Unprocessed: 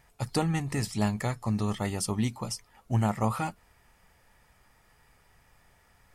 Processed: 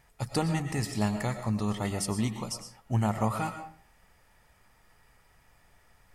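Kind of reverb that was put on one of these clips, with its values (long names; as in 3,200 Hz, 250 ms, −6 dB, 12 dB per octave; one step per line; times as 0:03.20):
comb and all-pass reverb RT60 0.45 s, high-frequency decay 0.65×, pre-delay 75 ms, DRR 8 dB
level −1 dB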